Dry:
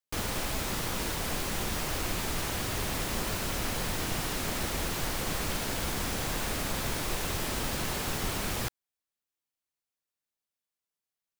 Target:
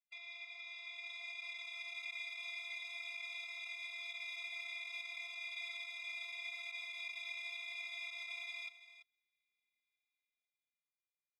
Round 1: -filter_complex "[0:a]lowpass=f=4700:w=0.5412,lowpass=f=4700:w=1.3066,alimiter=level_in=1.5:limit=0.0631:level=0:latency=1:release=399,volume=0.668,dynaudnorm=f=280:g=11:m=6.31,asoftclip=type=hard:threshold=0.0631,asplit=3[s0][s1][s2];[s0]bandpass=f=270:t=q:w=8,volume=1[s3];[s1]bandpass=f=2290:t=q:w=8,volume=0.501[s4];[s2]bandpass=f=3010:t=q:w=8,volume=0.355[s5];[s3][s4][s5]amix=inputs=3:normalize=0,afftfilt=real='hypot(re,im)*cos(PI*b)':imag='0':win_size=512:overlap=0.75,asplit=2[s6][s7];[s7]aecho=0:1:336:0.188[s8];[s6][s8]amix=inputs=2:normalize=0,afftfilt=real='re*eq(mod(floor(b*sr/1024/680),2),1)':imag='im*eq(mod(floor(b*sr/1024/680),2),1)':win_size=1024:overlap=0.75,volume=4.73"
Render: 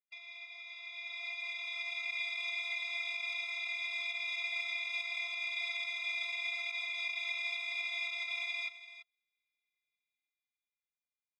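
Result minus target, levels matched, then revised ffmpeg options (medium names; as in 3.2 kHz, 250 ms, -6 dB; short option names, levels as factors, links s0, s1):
hard clipper: distortion -4 dB
-filter_complex "[0:a]lowpass=f=4700:w=0.5412,lowpass=f=4700:w=1.3066,alimiter=level_in=1.5:limit=0.0631:level=0:latency=1:release=399,volume=0.668,dynaudnorm=f=280:g=11:m=6.31,asoftclip=type=hard:threshold=0.02,asplit=3[s0][s1][s2];[s0]bandpass=f=270:t=q:w=8,volume=1[s3];[s1]bandpass=f=2290:t=q:w=8,volume=0.501[s4];[s2]bandpass=f=3010:t=q:w=8,volume=0.355[s5];[s3][s4][s5]amix=inputs=3:normalize=0,afftfilt=real='hypot(re,im)*cos(PI*b)':imag='0':win_size=512:overlap=0.75,asplit=2[s6][s7];[s7]aecho=0:1:336:0.188[s8];[s6][s8]amix=inputs=2:normalize=0,afftfilt=real='re*eq(mod(floor(b*sr/1024/680),2),1)':imag='im*eq(mod(floor(b*sr/1024/680),2),1)':win_size=1024:overlap=0.75,volume=4.73"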